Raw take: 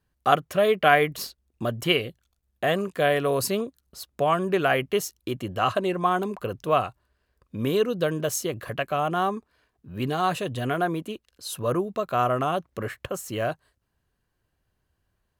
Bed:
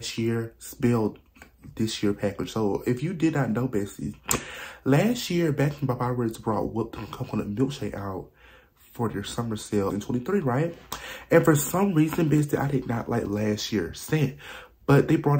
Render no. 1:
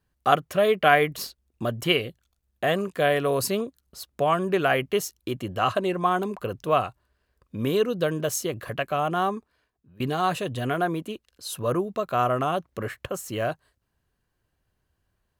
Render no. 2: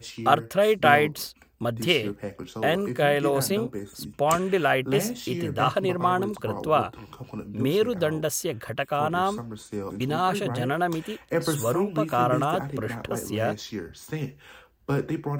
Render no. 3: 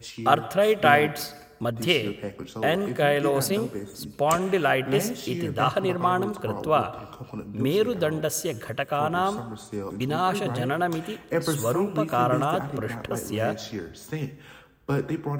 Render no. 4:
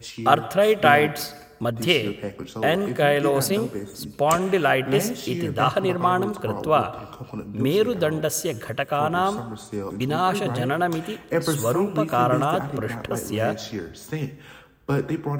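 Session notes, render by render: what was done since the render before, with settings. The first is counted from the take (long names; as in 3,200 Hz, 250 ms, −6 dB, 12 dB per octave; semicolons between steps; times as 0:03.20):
0:09.31–0:10.00: fade out, to −21 dB
mix in bed −7.5 dB
dense smooth reverb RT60 1.3 s, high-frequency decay 0.6×, pre-delay 90 ms, DRR 17 dB
level +2.5 dB; brickwall limiter −2 dBFS, peak gain reduction 1.5 dB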